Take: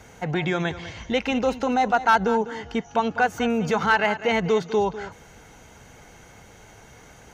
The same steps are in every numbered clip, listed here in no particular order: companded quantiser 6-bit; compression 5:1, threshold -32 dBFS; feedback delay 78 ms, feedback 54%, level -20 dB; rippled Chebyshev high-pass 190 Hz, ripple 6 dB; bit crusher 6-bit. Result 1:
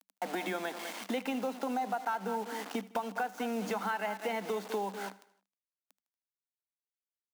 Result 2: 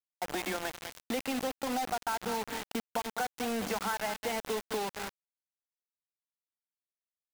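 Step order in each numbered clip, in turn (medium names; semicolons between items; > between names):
bit crusher > companded quantiser > rippled Chebyshev high-pass > compression > feedback delay; feedback delay > companded quantiser > rippled Chebyshev high-pass > compression > bit crusher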